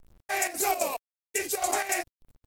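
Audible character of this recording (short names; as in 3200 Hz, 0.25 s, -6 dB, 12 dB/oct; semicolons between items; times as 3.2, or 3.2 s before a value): chopped level 3.7 Hz, depth 65%, duty 75%; a quantiser's noise floor 10-bit, dither none; Vorbis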